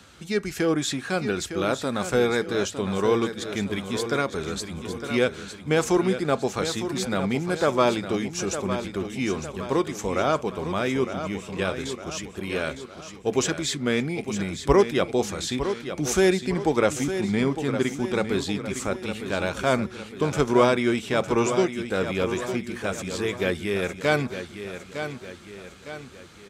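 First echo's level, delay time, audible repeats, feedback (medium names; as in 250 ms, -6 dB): -9.5 dB, 908 ms, 5, 48%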